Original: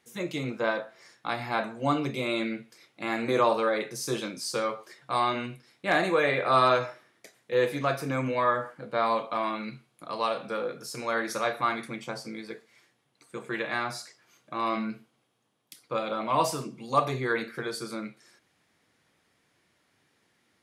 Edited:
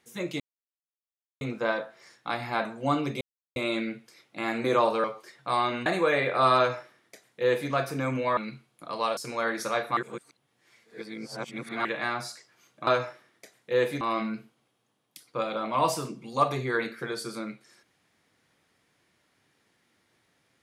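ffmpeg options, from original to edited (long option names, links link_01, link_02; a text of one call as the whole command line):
ffmpeg -i in.wav -filter_complex "[0:a]asplit=11[link_01][link_02][link_03][link_04][link_05][link_06][link_07][link_08][link_09][link_10][link_11];[link_01]atrim=end=0.4,asetpts=PTS-STARTPTS,afade=type=out:start_time=0.396:duration=0.004:curve=hsin,apad=pad_dur=1.01[link_12];[link_02]atrim=start=0.4:end=2.2,asetpts=PTS-STARTPTS,afade=type=in:duration=0.004:curve=hsin,afade=type=out:start_time=1.796:duration=0.004:curve=hsin,apad=pad_dur=0.35[link_13];[link_03]atrim=start=2.2:end=3.682,asetpts=PTS-STARTPTS,afade=type=in:duration=0.004:curve=hsin[link_14];[link_04]atrim=start=4.668:end=5.492[link_15];[link_05]atrim=start=5.968:end=8.482[link_16];[link_06]atrim=start=9.568:end=10.372[link_17];[link_07]atrim=start=10.868:end=11.672[link_18];[link_08]atrim=start=11.668:end=13.552,asetpts=PTS-STARTPTS,areverse[link_19];[link_09]atrim=start=13.548:end=14.572[link_20];[link_10]atrim=start=6.678:end=7.822[link_21];[link_11]atrim=start=14.568[link_22];[link_12][link_13][link_14]concat=n=3:v=0:a=1[link_23];[link_23][link_15]acrossfade=duration=0.004:curve1=hsin:curve2=hsin[link_24];[link_24][link_16]acrossfade=duration=0.004:curve1=hsin:curve2=hsin[link_25];[link_25][link_17]acrossfade=duration=0.004:curve1=hsin:curve2=hsin[link_26];[link_26][link_18]acrossfade=duration=0.004:curve1=hsin:curve2=hsin[link_27];[link_27][link_19]acrossfade=duration=0.004:curve1=hsin:curve2=hsin[link_28];[link_28][link_20]acrossfade=duration=0.004:curve1=hsin:curve2=hsin[link_29];[link_29][link_21]acrossfade=duration=0.004:curve1=hsin:curve2=hsin[link_30];[link_30][link_22]acrossfade=duration=0.004:curve1=hsin:curve2=hsin" out.wav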